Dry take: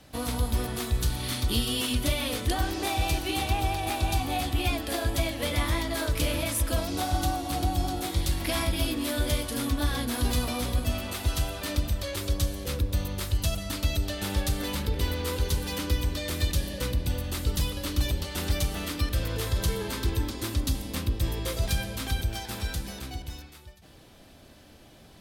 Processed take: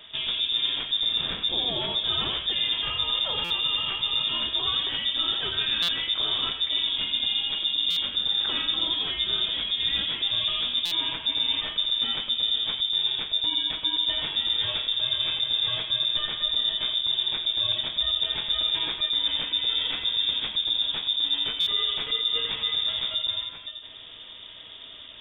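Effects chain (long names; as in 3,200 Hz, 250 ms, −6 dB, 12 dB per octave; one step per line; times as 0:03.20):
feedback echo with a low-pass in the loop 86 ms, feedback 38%, low-pass 1,200 Hz, level −4 dB
reversed playback
downward compressor 6 to 1, threshold −32 dBFS, peak gain reduction 13 dB
reversed playback
voice inversion scrambler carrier 3,600 Hz
buffer that repeats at 0:03.44/0:05.82/0:07.90/0:10.85/0:21.60, samples 256, times 10
level +7 dB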